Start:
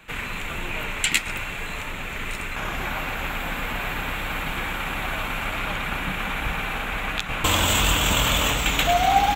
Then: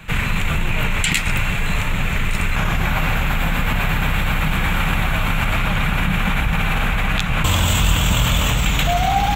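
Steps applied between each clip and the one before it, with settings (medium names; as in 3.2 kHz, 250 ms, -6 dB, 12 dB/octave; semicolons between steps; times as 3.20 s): resonant low shelf 220 Hz +8 dB, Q 1.5; in parallel at +3 dB: compressor with a negative ratio -25 dBFS, ratio -1; on the sum: trim -2 dB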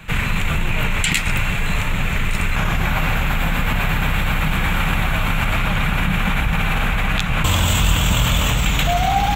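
no audible change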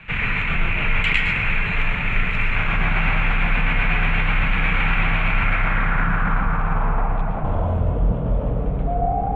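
low-pass sweep 2.4 kHz -> 530 Hz, 5.22–7.98 s; on a send at -1 dB: reverberation RT60 0.55 s, pre-delay 107 ms; on the sum: trim -6.5 dB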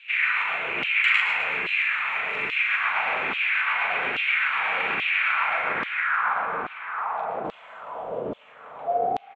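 loudspeakers at several distances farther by 14 m -5 dB, 89 m -11 dB; LFO high-pass saw down 1.2 Hz 310–3300 Hz; trim -5 dB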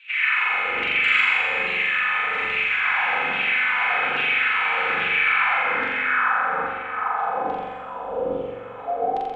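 flutter echo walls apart 7.4 m, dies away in 1.3 s; simulated room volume 3500 m³, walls furnished, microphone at 2 m; trim -2 dB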